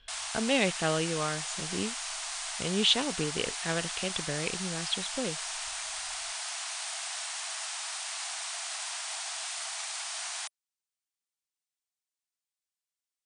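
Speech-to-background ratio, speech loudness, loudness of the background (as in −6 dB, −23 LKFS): 3.0 dB, −31.5 LKFS, −34.5 LKFS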